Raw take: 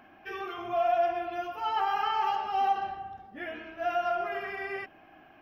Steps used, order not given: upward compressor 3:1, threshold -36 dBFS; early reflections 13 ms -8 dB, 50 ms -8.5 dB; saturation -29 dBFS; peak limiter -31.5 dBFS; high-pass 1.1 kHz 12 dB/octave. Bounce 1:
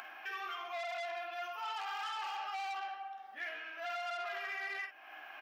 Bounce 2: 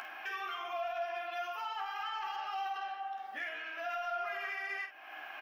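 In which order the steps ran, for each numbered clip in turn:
early reflections > upward compressor > saturation > high-pass > peak limiter; high-pass > peak limiter > upward compressor > saturation > early reflections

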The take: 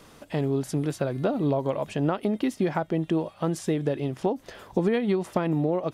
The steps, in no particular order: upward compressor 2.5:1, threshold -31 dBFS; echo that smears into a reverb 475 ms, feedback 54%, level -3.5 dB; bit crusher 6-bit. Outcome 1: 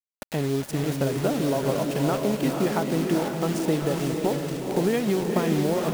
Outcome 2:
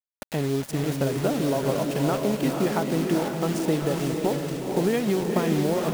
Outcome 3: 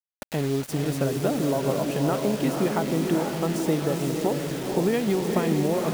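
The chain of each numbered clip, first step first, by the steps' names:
bit crusher > upward compressor > echo that smears into a reverb; bit crusher > echo that smears into a reverb > upward compressor; echo that smears into a reverb > bit crusher > upward compressor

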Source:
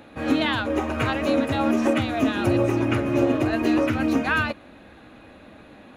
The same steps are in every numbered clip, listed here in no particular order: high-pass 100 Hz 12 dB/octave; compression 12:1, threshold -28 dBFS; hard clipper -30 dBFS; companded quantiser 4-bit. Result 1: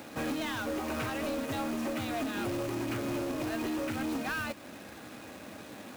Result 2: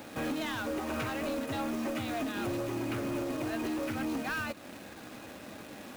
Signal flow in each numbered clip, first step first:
compression > companded quantiser > high-pass > hard clipper; high-pass > companded quantiser > compression > hard clipper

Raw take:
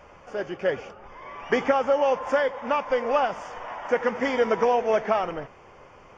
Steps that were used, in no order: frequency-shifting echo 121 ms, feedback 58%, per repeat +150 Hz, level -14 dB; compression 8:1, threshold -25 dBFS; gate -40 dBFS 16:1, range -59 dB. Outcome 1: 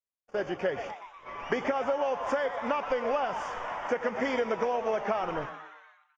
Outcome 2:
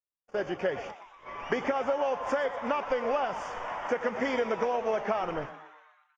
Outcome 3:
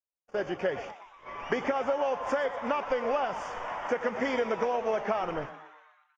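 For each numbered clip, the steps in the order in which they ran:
gate > frequency-shifting echo > compression; gate > compression > frequency-shifting echo; compression > gate > frequency-shifting echo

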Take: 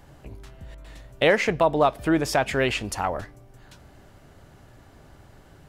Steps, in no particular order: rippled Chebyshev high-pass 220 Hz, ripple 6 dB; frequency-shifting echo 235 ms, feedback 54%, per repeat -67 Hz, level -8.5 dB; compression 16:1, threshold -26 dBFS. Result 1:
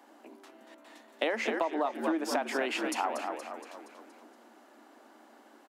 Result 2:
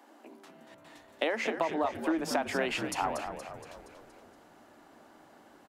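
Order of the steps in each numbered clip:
frequency-shifting echo > rippled Chebyshev high-pass > compression; rippled Chebyshev high-pass > compression > frequency-shifting echo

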